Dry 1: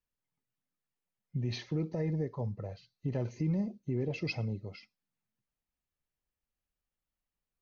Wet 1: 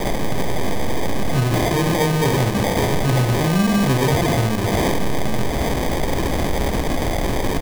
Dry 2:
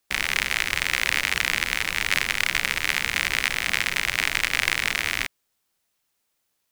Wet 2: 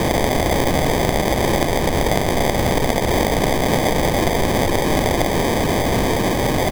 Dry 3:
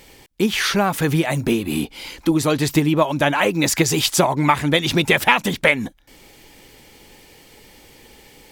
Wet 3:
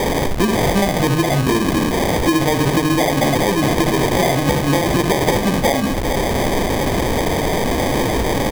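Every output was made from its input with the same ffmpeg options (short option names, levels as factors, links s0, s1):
-filter_complex "[0:a]aeval=exprs='val(0)+0.5*0.168*sgn(val(0))':c=same,bandreject=f=50:t=h:w=6,bandreject=f=100:t=h:w=6,bandreject=f=150:t=h:w=6,asplit=2[s0][s1];[s1]aecho=0:1:15|69:0.531|0.531[s2];[s0][s2]amix=inputs=2:normalize=0,acrusher=samples=32:mix=1:aa=0.000001,acompressor=threshold=0.141:ratio=4,volume=1.41"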